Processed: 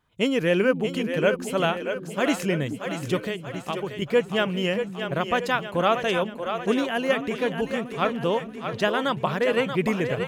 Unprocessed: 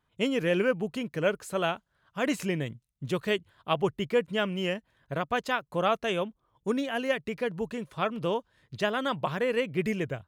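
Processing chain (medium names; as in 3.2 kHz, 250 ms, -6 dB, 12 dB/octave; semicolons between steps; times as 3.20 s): 3.16–4.02 s: compression, threshold -32 dBFS, peak gain reduction 11 dB; on a send: two-band feedback delay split 320 Hz, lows 425 ms, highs 632 ms, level -7.5 dB; on the sum: trim +4.5 dB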